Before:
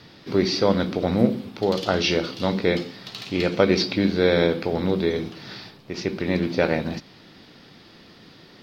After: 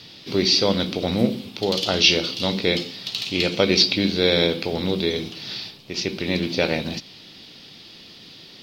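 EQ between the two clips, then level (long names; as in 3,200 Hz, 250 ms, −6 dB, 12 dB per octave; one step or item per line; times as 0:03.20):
high shelf with overshoot 2,200 Hz +8.5 dB, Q 1.5
−1.0 dB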